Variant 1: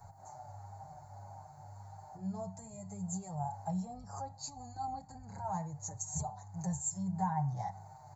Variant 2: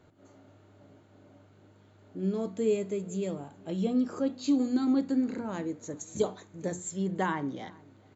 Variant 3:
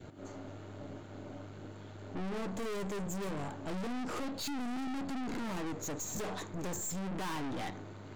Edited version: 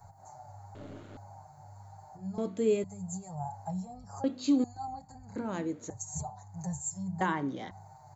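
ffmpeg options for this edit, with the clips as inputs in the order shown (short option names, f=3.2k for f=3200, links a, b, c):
-filter_complex "[1:a]asplit=4[a][b][c][d];[0:a]asplit=6[e][f][g][h][i][j];[e]atrim=end=0.752[k];[2:a]atrim=start=0.748:end=1.172[l];[f]atrim=start=1.168:end=2.382[m];[a]atrim=start=2.378:end=2.842[n];[g]atrim=start=2.838:end=4.242[o];[b]atrim=start=4.238:end=4.642[p];[h]atrim=start=4.638:end=5.362[q];[c]atrim=start=5.358:end=5.902[r];[i]atrim=start=5.898:end=7.212[s];[d]atrim=start=7.208:end=7.712[t];[j]atrim=start=7.708[u];[k][l]acrossfade=d=0.004:c1=hsin:c2=hsin[v];[v][m]acrossfade=d=0.004:c1=hsin:c2=hsin[w];[w][n]acrossfade=d=0.004:c1=hsin:c2=hsin[x];[x][o]acrossfade=d=0.004:c1=hsin:c2=hsin[y];[y][p]acrossfade=d=0.004:c1=hsin:c2=hsin[z];[z][q]acrossfade=d=0.004:c1=hsin:c2=hsin[aa];[aa][r]acrossfade=d=0.004:c1=hsin:c2=hsin[ab];[ab][s]acrossfade=d=0.004:c1=hsin:c2=hsin[ac];[ac][t]acrossfade=d=0.004:c1=hsin:c2=hsin[ad];[ad][u]acrossfade=d=0.004:c1=hsin:c2=hsin"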